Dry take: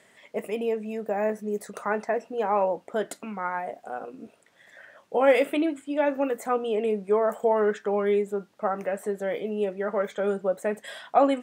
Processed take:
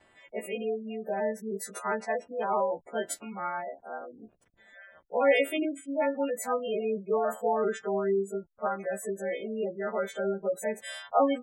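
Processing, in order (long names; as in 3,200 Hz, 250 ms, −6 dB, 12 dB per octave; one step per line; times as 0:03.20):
every partial snapped to a pitch grid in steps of 2 semitones
slack as between gear wheels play −45 dBFS
gate on every frequency bin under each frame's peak −20 dB strong
level −3.5 dB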